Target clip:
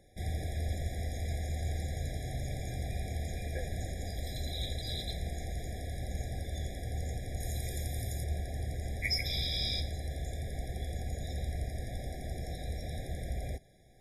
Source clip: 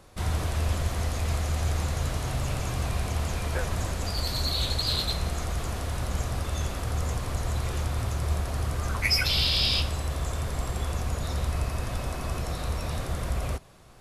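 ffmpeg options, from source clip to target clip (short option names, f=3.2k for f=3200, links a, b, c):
-filter_complex "[0:a]asettb=1/sr,asplit=3[a][b][c];[a]atrim=end=7.404[d];[b]atrim=start=7.4:end=8.24,asetpts=PTS-STARTPTS,afade=t=in:d=0.004:c=qsin,afade=t=out:st=0.836:d=0.004:c=qsin,aemphasis=mode=production:type=50kf[e];[c]atrim=start=8.236[f];[d][e]acrossfade=d=0.004:c1=hsin:c2=qsin[g];[g][f]acrossfade=d=0.004:c1=qsin:c2=hsin,afftfilt=real='re*eq(mod(floor(b*sr/1024/810),2),0)':imag='im*eq(mod(floor(b*sr/1024/810),2),0)':win_size=1024:overlap=0.75,volume=-7.5dB"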